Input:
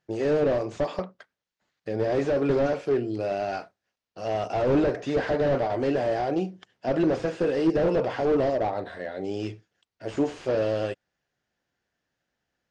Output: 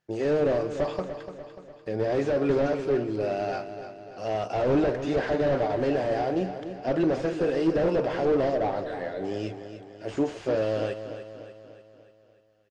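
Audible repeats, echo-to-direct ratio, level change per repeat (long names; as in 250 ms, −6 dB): 5, −9.0 dB, −5.5 dB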